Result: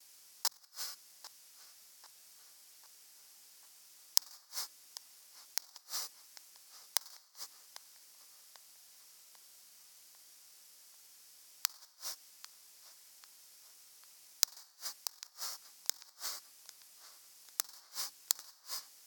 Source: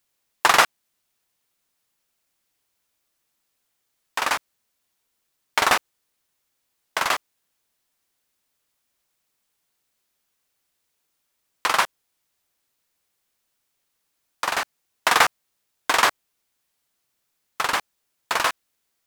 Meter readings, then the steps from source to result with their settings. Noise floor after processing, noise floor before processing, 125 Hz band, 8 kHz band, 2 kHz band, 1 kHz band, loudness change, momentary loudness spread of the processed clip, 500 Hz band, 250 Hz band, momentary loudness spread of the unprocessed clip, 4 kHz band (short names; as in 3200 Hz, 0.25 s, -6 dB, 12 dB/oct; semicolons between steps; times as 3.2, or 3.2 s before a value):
-63 dBFS, -76 dBFS, under -30 dB, -6.5 dB, -29.0 dB, -30.0 dB, -16.5 dB, 20 LU, -30.5 dB, under -30 dB, 10 LU, -12.5 dB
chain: negative-ratio compressor -22 dBFS, ratio -0.5; resonant high shelf 3700 Hz +11 dB, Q 3; gate with hold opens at -51 dBFS; non-linear reverb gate 0.31 s falling, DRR 5.5 dB; careless resampling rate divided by 2×, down none, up hold; flipped gate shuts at -16 dBFS, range -38 dB; HPF 67 Hz; tilt +2 dB/oct; de-hum 98.05 Hz, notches 3; on a send: tape echo 0.795 s, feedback 59%, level -14 dB, low-pass 4300 Hz; on the sum: gain -6.5 dB